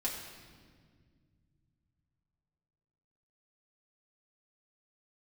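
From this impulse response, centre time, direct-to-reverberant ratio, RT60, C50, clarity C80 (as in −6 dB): 55 ms, −5.0 dB, 1.8 s, 4.0 dB, 5.5 dB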